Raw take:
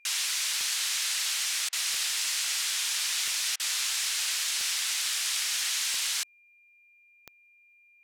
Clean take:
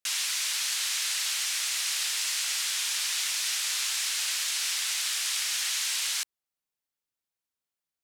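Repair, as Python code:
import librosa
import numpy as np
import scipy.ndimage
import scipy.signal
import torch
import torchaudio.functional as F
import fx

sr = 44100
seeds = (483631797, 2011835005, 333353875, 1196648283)

y = fx.fix_declick_ar(x, sr, threshold=10.0)
y = fx.notch(y, sr, hz=2400.0, q=30.0)
y = fx.fix_interpolate(y, sr, at_s=(1.69, 3.56), length_ms=36.0)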